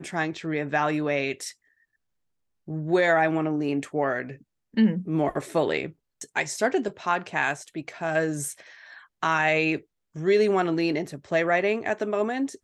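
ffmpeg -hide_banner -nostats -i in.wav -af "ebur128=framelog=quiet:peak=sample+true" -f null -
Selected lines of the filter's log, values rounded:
Integrated loudness:
  I:         -25.6 LUFS
  Threshold: -36.3 LUFS
Loudness range:
  LRA:         3.2 LU
  Threshold: -46.4 LUFS
  LRA low:   -27.8 LUFS
  LRA high:  -24.6 LUFS
Sample peak:
  Peak:       -9.6 dBFS
True peak:
  Peak:       -9.6 dBFS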